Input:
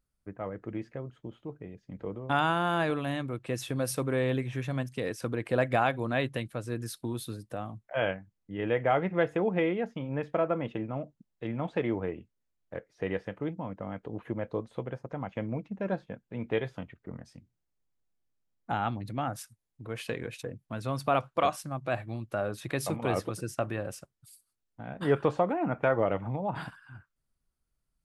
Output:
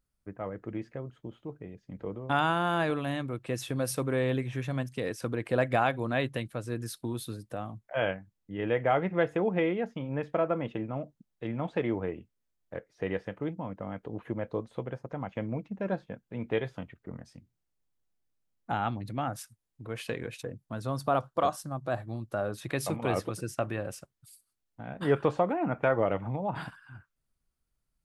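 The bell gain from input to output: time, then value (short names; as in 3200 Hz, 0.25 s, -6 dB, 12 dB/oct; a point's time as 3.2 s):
bell 2400 Hz 0.68 oct
20.38 s -0.5 dB
20.97 s -11.5 dB
22.13 s -11.5 dB
22.74 s +0.5 dB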